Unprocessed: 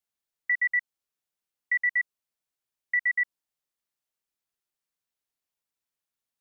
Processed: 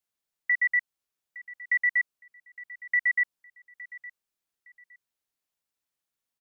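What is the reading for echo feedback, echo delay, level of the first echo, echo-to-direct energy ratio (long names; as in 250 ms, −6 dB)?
26%, 863 ms, −18.5 dB, −18.0 dB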